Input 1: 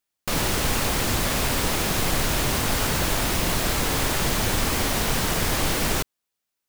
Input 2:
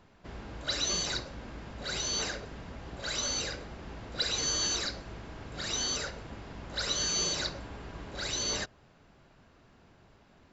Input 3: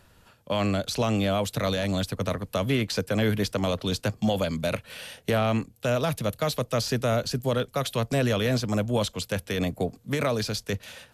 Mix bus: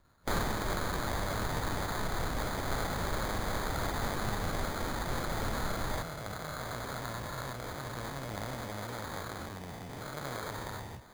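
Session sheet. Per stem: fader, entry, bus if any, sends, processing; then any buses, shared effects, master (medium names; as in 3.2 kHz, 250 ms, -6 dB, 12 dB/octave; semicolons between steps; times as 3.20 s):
+2.5 dB, 0.00 s, no send, auto duck -12 dB, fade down 0.60 s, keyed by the third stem
-7.0 dB, 0.00 s, no send, low-pass 1.3 kHz
-15.5 dB, 0.00 s, no send, every event in the spectrogram widened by 480 ms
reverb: none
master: peaking EQ 400 Hz -14.5 dB 2.1 oct; sample-and-hold 16×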